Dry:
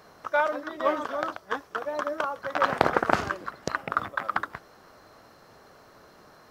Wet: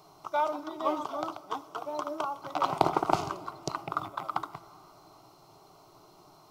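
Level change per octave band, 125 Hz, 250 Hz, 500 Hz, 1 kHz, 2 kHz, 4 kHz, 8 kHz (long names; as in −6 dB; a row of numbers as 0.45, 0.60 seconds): −1.5, −2.0, −5.0, −2.0, −14.0, −2.5, −0.5 decibels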